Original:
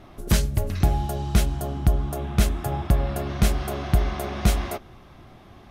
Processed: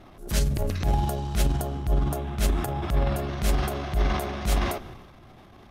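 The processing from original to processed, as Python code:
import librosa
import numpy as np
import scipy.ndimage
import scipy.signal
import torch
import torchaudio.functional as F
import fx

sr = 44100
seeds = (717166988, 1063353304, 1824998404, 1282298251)

y = fx.transient(x, sr, attack_db=-10, sustain_db=9)
y = y * 10.0 ** (-2.5 / 20.0)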